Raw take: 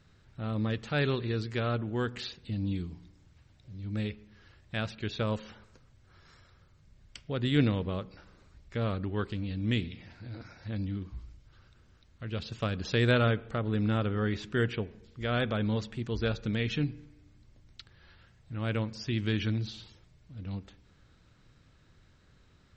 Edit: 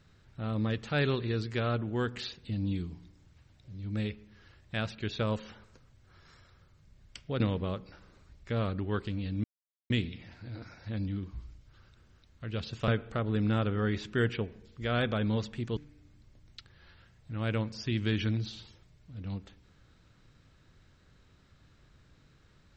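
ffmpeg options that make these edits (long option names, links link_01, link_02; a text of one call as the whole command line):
ffmpeg -i in.wav -filter_complex "[0:a]asplit=5[link_01][link_02][link_03][link_04][link_05];[link_01]atrim=end=7.402[link_06];[link_02]atrim=start=7.648:end=9.69,asetpts=PTS-STARTPTS,afade=type=out:start_time=2.038:duration=0.004:curve=hsin,apad=pad_dur=0.46[link_07];[link_03]atrim=start=9.69:end=12.672,asetpts=PTS-STARTPTS,afade=type=in:duration=0.004:curve=hsin[link_08];[link_04]atrim=start=13.268:end=16.162[link_09];[link_05]atrim=start=16.978[link_10];[link_07][link_08]concat=n=2:v=0:a=1[link_11];[link_06][link_11]acrossfade=duration=0.004:curve1=hsin:curve2=hsin[link_12];[link_12][link_09]acrossfade=duration=0.004:curve1=hsin:curve2=hsin[link_13];[link_13][link_10]acrossfade=duration=0.004:curve1=hsin:curve2=hsin" out.wav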